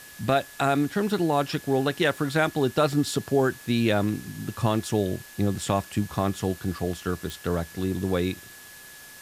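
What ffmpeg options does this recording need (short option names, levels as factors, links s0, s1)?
-af "adeclick=t=4,bandreject=f=1700:w=30,afwtdn=0.005"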